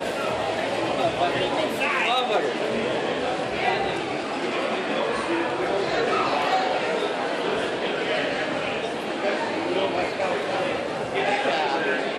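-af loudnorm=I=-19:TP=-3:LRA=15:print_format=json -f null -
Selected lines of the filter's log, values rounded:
"input_i" : "-24.5",
"input_tp" : "-11.0",
"input_lra" : "1.6",
"input_thresh" : "-34.5",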